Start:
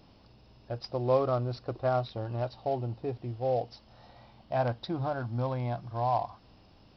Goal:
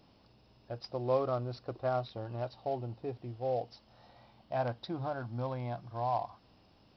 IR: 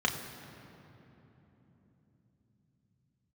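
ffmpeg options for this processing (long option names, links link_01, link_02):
-af "lowshelf=frequency=77:gain=-7.5,volume=-4dB"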